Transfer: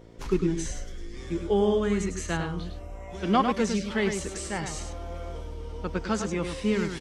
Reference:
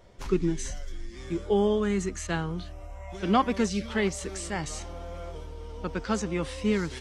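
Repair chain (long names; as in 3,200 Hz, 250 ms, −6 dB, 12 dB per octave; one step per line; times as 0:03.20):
hum removal 56.2 Hz, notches 9
echo removal 102 ms −6.5 dB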